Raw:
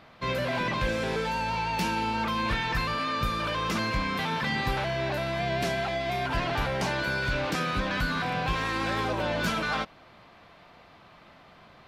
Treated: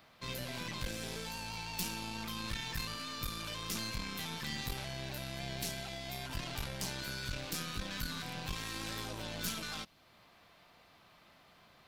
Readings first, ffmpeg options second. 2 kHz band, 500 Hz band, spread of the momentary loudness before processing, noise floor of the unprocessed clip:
-14.0 dB, -16.5 dB, 2 LU, -54 dBFS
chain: -filter_complex "[0:a]acrossover=split=290|3000[s0][s1][s2];[s1]acompressor=threshold=0.00282:ratio=1.5[s3];[s0][s3][s2]amix=inputs=3:normalize=0,aeval=exprs='(tanh(20*val(0)+0.75)-tanh(0.75))/20':c=same,aemphasis=mode=production:type=75kf,volume=0.501"

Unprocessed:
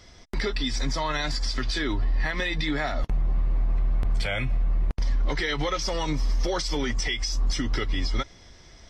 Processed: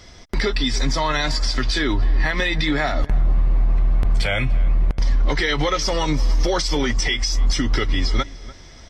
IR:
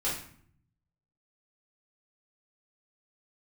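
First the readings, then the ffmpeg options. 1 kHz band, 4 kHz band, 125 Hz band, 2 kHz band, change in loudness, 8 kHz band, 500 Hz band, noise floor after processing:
+6.5 dB, +6.5 dB, +6.5 dB, +6.5 dB, +6.5 dB, +6.5 dB, +6.5 dB, -42 dBFS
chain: -filter_complex "[0:a]asplit=2[s0][s1];[s1]adelay=294,lowpass=f=1700:p=1,volume=0.133,asplit=2[s2][s3];[s3]adelay=294,lowpass=f=1700:p=1,volume=0.22[s4];[s0][s2][s4]amix=inputs=3:normalize=0,volume=2.11"

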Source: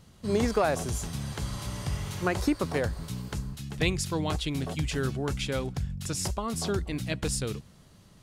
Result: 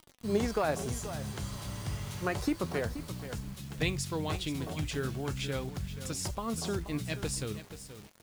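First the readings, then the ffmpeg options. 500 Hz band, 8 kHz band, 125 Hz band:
-4.0 dB, -4.0 dB, -4.5 dB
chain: -filter_complex "[0:a]asplit=2[s0][s1];[s1]aecho=0:1:479|958:0.237|0.0403[s2];[s0][s2]amix=inputs=2:normalize=0,acrusher=bits=7:mix=0:aa=0.000001,flanger=delay=3.1:depth=7.9:regen=73:speed=0.32:shape=triangular"

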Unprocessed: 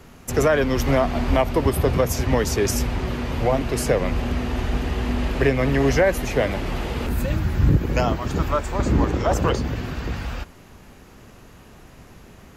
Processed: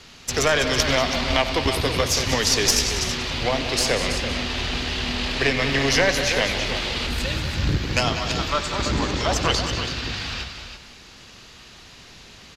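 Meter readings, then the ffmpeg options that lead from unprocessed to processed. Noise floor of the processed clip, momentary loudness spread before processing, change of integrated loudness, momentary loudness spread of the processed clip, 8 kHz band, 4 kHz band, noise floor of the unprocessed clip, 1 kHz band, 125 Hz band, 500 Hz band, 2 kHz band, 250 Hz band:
-46 dBFS, 8 LU, +0.5 dB, 8 LU, +7.5 dB, +12.5 dB, -47 dBFS, 0.0 dB, -5.0 dB, -3.5 dB, +5.5 dB, -4.5 dB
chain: -filter_complex "[0:a]asplit=2[s0][s1];[s1]aecho=0:1:184:0.237[s2];[s0][s2]amix=inputs=2:normalize=0,crystalizer=i=8.5:c=0,lowpass=f=4200:t=q:w=1.9,asplit=2[s3][s4];[s4]aecho=0:1:93|203|329:0.211|0.237|0.355[s5];[s3][s5]amix=inputs=2:normalize=0,aeval=exprs='1.26*(cos(1*acos(clip(val(0)/1.26,-1,1)))-cos(1*PI/2))+0.447*(cos(2*acos(clip(val(0)/1.26,-1,1)))-cos(2*PI/2))':c=same,volume=0.501"

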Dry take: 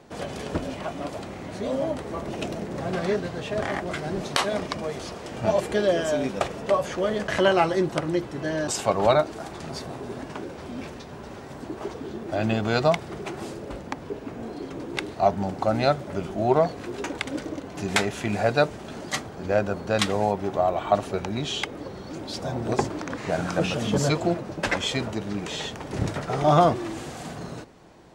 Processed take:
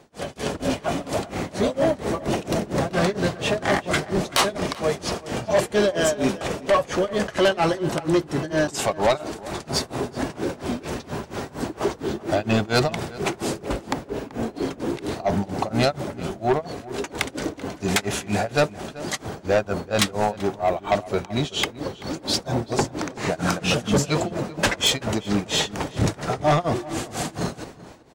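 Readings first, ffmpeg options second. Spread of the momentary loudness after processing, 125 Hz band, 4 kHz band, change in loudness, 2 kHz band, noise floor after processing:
9 LU, +2.5 dB, +5.5 dB, +2.0 dB, +3.0 dB, -45 dBFS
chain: -filter_complex "[0:a]tremolo=f=4.3:d=0.98,dynaudnorm=f=160:g=5:m=3.98,asoftclip=type=tanh:threshold=0.224,highshelf=f=5200:g=6,asplit=2[s0][s1];[s1]adelay=384.8,volume=0.126,highshelf=f=4000:g=-8.66[s2];[s0][s2]amix=inputs=2:normalize=0"

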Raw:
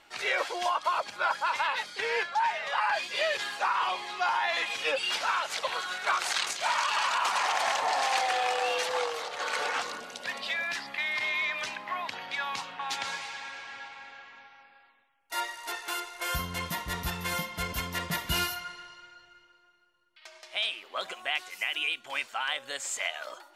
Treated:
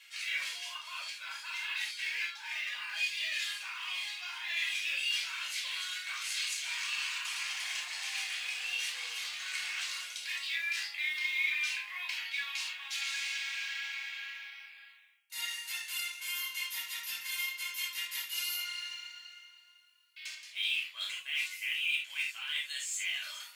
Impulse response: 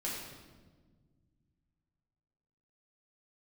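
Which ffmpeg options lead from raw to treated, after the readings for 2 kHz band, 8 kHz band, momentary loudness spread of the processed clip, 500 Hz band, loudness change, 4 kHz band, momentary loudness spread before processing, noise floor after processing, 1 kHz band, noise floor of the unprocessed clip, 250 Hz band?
-3.0 dB, -1.5 dB, 8 LU, under -30 dB, -4.5 dB, -1.0 dB, 10 LU, -57 dBFS, -21.5 dB, -60 dBFS, under -25 dB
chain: -filter_complex "[0:a]highshelf=f=6000:g=11,areverse,acompressor=threshold=0.00891:ratio=4,areverse,highpass=f=2400:t=q:w=2,acrusher=bits=6:mode=log:mix=0:aa=0.000001[s0];[1:a]atrim=start_sample=2205,atrim=end_sample=3969[s1];[s0][s1]afir=irnorm=-1:irlink=0,volume=1.41"

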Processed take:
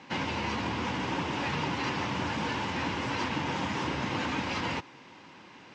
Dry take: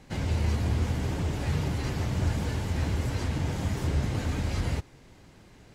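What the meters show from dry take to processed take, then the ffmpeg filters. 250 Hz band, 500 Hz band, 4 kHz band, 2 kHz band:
0.0 dB, +0.5 dB, +5.5 dB, +7.0 dB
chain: -filter_complex "[0:a]asplit=2[s0][s1];[s1]alimiter=level_in=1.06:limit=0.0631:level=0:latency=1,volume=0.944,volume=0.794[s2];[s0][s2]amix=inputs=2:normalize=0,highpass=280,equalizer=f=420:t=q:w=4:g=-7,equalizer=f=650:t=q:w=4:g=-7,equalizer=f=980:t=q:w=4:g=7,equalizer=f=2700:t=q:w=4:g=4,equalizer=f=4300:t=q:w=4:g=-4,lowpass=f=5400:w=0.5412,lowpass=f=5400:w=1.3066,volume=1.26"

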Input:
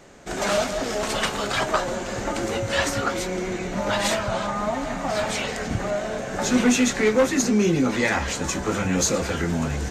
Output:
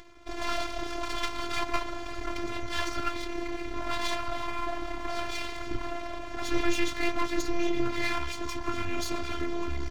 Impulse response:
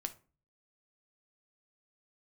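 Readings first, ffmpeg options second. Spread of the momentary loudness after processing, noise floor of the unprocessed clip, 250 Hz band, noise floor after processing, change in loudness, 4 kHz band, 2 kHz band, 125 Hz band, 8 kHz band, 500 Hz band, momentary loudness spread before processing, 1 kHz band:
7 LU, -31 dBFS, -10.5 dB, -37 dBFS, -9.5 dB, -7.0 dB, -8.0 dB, -13.0 dB, -15.5 dB, -11.5 dB, 8 LU, -6.5 dB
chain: -af "lowpass=f=5100:w=0.5412,lowpass=f=5100:w=1.3066,aecho=1:1:0.9:0.46,acompressor=mode=upward:threshold=0.00891:ratio=2.5,aeval=exprs='max(val(0),0)':c=same,afftfilt=real='hypot(re,im)*cos(PI*b)':imag='0':win_size=512:overlap=0.75"

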